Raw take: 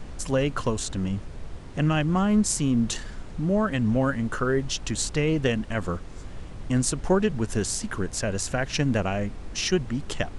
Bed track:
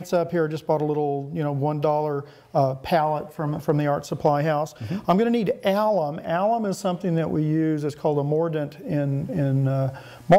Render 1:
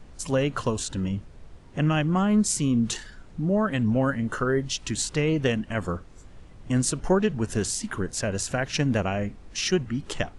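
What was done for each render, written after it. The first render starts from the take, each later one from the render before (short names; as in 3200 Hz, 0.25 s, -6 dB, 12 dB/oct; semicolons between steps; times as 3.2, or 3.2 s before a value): noise print and reduce 9 dB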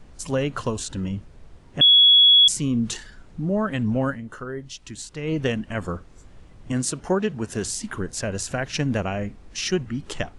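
1.81–2.48 bleep 3360 Hz -10 dBFS; 4.08–5.34 dip -8.5 dB, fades 0.13 s; 6.72–7.64 HPF 130 Hz 6 dB/oct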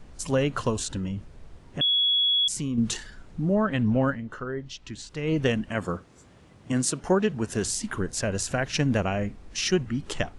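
0.97–2.78 compressor 2:1, threshold -29 dBFS; 3.54–5.1 LPF 5200 Hz; 5.69–7.04 HPF 110 Hz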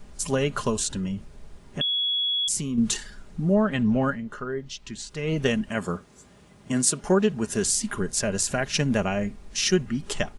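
high shelf 7400 Hz +9.5 dB; comb 4.9 ms, depth 41%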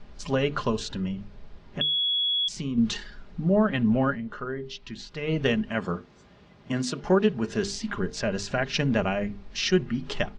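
LPF 4800 Hz 24 dB/oct; notches 50/100/150/200/250/300/350/400/450 Hz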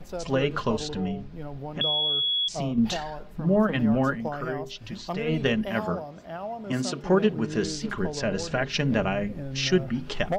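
add bed track -13 dB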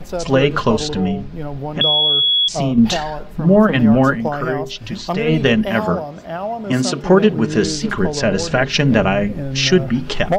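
gain +10.5 dB; limiter -2 dBFS, peak gain reduction 2.5 dB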